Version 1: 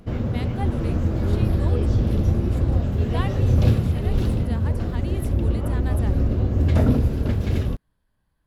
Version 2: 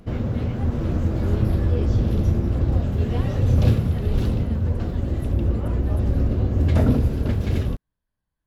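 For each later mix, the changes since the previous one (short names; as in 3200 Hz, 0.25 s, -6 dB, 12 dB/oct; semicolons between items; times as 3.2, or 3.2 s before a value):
speech -11.0 dB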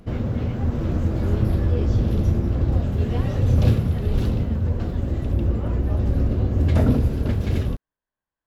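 speech: add tone controls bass -15 dB, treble -12 dB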